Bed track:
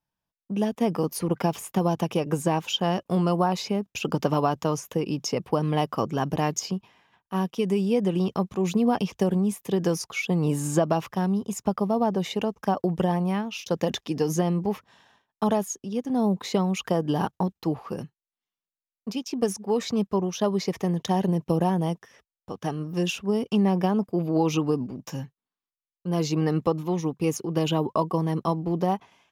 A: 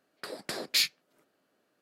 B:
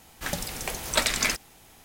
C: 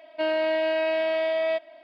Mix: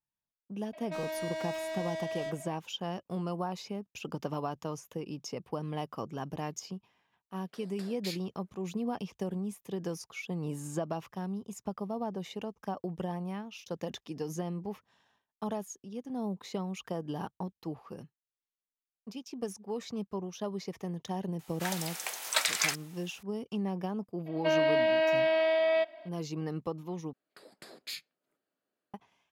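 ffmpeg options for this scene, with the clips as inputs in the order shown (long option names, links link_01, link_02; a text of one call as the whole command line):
ffmpeg -i bed.wav -i cue0.wav -i cue1.wav -i cue2.wav -filter_complex "[3:a]asplit=2[link_01][link_02];[1:a]asplit=2[link_03][link_04];[0:a]volume=-12dB[link_05];[link_01]asoftclip=type=tanh:threshold=-35dB[link_06];[2:a]highpass=780[link_07];[link_04]bandreject=frequency=5700:width=6.3[link_08];[link_05]asplit=2[link_09][link_10];[link_09]atrim=end=27.134[link_11];[link_08]atrim=end=1.81,asetpts=PTS-STARTPTS,volume=-14.5dB[link_12];[link_10]atrim=start=28.936[link_13];[link_06]atrim=end=1.83,asetpts=PTS-STARTPTS,volume=-1dB,afade=type=in:duration=0.004:curve=hsin,afade=type=out:start_time=1.826:duration=0.004:curve=hsin,adelay=730[link_14];[link_03]atrim=end=1.81,asetpts=PTS-STARTPTS,volume=-15dB,afade=type=in:duration=0.004:curve=hsin,afade=type=out:start_time=1.806:duration=0.004:curve=hsin,adelay=321930S[link_15];[link_07]atrim=end=1.84,asetpts=PTS-STARTPTS,volume=-3.5dB,afade=type=in:duration=0.004:curve=hsin,afade=type=out:start_time=1.836:duration=0.004:curve=hsin,adelay=21390[link_16];[link_02]atrim=end=1.83,asetpts=PTS-STARTPTS,volume=-1.5dB,afade=type=in:duration=0.004:curve=hsin,afade=type=out:start_time=1.826:duration=0.004:curve=hsin,adelay=24260[link_17];[link_11][link_12]acrossfade=duration=0.004:curve1=hsin:curve2=hsin[link_18];[link_18][link_13]acrossfade=duration=0.004:curve1=hsin:curve2=hsin[link_19];[link_19][link_14][link_15][link_16][link_17]amix=inputs=5:normalize=0" out.wav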